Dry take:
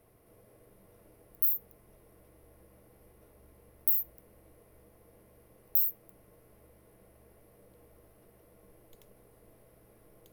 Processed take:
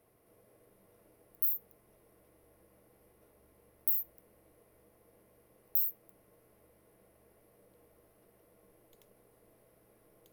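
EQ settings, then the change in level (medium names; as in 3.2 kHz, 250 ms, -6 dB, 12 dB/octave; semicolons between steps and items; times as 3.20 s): bass shelf 110 Hz -9.5 dB; -3.5 dB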